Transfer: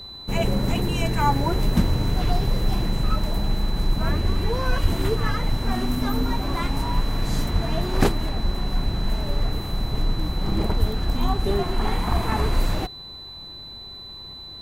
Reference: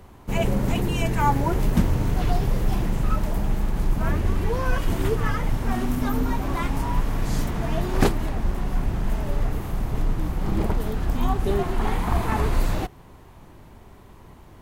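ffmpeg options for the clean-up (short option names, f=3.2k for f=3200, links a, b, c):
-filter_complex "[0:a]bandreject=f=4k:w=30,asplit=3[a][b][c];[a]afade=t=out:st=4.82:d=0.02[d];[b]highpass=f=140:w=0.5412,highpass=f=140:w=1.3066,afade=t=in:st=4.82:d=0.02,afade=t=out:st=4.94:d=0.02[e];[c]afade=t=in:st=4.94:d=0.02[f];[d][e][f]amix=inputs=3:normalize=0,asplit=3[g][h][i];[g]afade=t=out:st=7.52:d=0.02[j];[h]highpass=f=140:w=0.5412,highpass=f=140:w=1.3066,afade=t=in:st=7.52:d=0.02,afade=t=out:st=7.64:d=0.02[k];[i]afade=t=in:st=7.64:d=0.02[l];[j][k][l]amix=inputs=3:normalize=0,asplit=3[m][n][o];[m]afade=t=out:st=10.79:d=0.02[p];[n]highpass=f=140:w=0.5412,highpass=f=140:w=1.3066,afade=t=in:st=10.79:d=0.02,afade=t=out:st=10.91:d=0.02[q];[o]afade=t=in:st=10.91:d=0.02[r];[p][q][r]amix=inputs=3:normalize=0"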